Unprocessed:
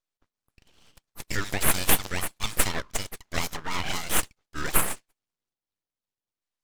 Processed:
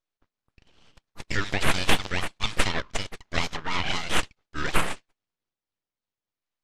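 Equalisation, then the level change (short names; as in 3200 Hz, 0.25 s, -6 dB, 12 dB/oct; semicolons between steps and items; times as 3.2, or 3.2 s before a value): dynamic EQ 3200 Hz, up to +4 dB, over -43 dBFS, Q 1; air absorption 93 m; +2.0 dB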